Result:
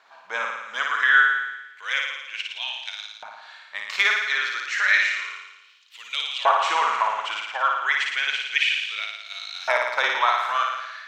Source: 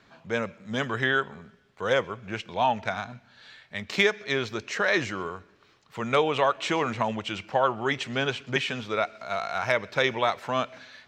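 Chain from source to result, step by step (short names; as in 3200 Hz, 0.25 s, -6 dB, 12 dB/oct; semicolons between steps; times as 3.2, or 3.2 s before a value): flutter echo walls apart 9.7 m, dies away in 1.1 s; LFO high-pass saw up 0.31 Hz 820–3800 Hz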